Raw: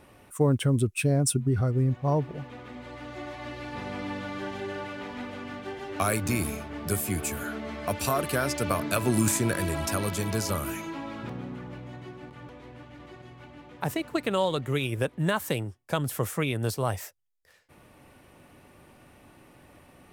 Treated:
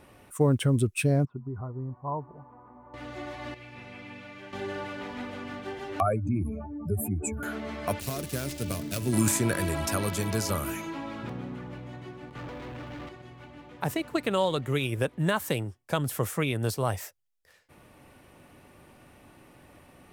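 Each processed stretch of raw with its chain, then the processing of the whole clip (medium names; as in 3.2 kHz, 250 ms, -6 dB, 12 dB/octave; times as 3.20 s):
1.25–2.94 s: four-pole ladder low-pass 1.1 kHz, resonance 70% + band-stop 510 Hz, Q 15
3.54–4.53 s: peaking EQ 2.4 kHz +10 dB 0.57 oct + feedback comb 120 Hz, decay 0.69 s, mix 80%
6.00–7.43 s: spectral contrast enhancement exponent 2.7 + peaking EQ 780 Hz +6 dB 0.38 oct
8.00–9.13 s: dead-time distortion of 0.11 ms + peaking EQ 1.1 kHz -14 dB 2.3 oct
12.35–13.09 s: treble shelf 7.8 kHz -8.5 dB + waveshaping leveller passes 3
whole clip: none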